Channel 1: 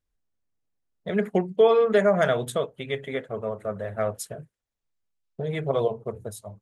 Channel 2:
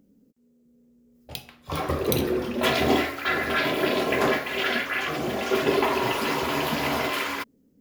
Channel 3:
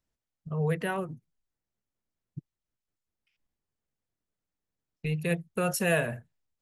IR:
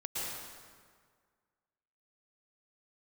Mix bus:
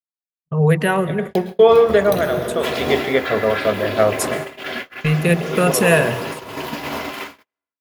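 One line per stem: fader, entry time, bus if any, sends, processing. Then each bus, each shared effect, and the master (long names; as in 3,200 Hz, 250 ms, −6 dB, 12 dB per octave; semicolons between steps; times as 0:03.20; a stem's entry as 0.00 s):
−0.5 dB, 0.00 s, send −18.5 dB, parametric band 130 Hz −6 dB 0.82 octaves; automatic ducking −11 dB, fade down 0.60 s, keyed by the third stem
−15.0 dB, 0.00 s, send −7.5 dB, no processing
+0.5 dB, 0.00 s, send −17.5 dB, no processing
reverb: on, RT60 1.8 s, pre-delay 103 ms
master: automatic gain control gain up to 13 dB; noise gate −25 dBFS, range −52 dB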